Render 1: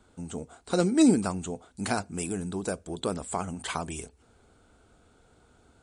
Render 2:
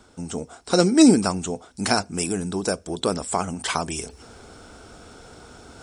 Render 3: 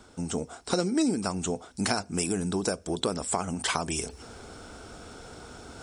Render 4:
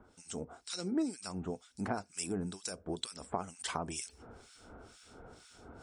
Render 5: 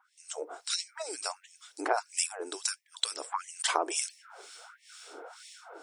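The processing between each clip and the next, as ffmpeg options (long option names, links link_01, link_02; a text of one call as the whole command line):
ffmpeg -i in.wav -af "lowshelf=frequency=160:gain=-5,areverse,acompressor=mode=upward:threshold=-42dB:ratio=2.5,areverse,equalizer=frequency=5400:width=7.5:gain=13.5,volume=7.5dB" out.wav
ffmpeg -i in.wav -af "acompressor=threshold=-24dB:ratio=5" out.wav
ffmpeg -i in.wav -filter_complex "[0:a]acrossover=split=1700[link_01][link_02];[link_01]aeval=exprs='val(0)*(1-1/2+1/2*cos(2*PI*2.1*n/s))':channel_layout=same[link_03];[link_02]aeval=exprs='val(0)*(1-1/2-1/2*cos(2*PI*2.1*n/s))':channel_layout=same[link_04];[link_03][link_04]amix=inputs=2:normalize=0,volume=-5.5dB" out.wav
ffmpeg -i in.wav -af "bandreject=frequency=50:width_type=h:width=6,bandreject=frequency=100:width_type=h:width=6,bandreject=frequency=150:width_type=h:width=6,bandreject=frequency=200:width_type=h:width=6,bandreject=frequency=250:width_type=h:width=6,dynaudnorm=framelen=240:gausssize=3:maxgain=9.5dB,afftfilt=real='re*gte(b*sr/1024,260*pow(1800/260,0.5+0.5*sin(2*PI*1.5*pts/sr)))':imag='im*gte(b*sr/1024,260*pow(1800/260,0.5+0.5*sin(2*PI*1.5*pts/sr)))':win_size=1024:overlap=0.75" out.wav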